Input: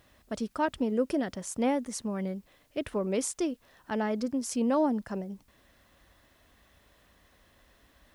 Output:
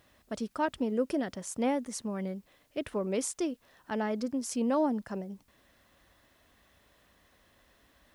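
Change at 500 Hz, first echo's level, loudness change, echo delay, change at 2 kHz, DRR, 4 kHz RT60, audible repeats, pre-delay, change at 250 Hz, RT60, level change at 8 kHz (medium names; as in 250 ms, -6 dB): -1.5 dB, no echo, -2.0 dB, no echo, -1.5 dB, no reverb, no reverb, no echo, no reverb, -2.0 dB, no reverb, -1.5 dB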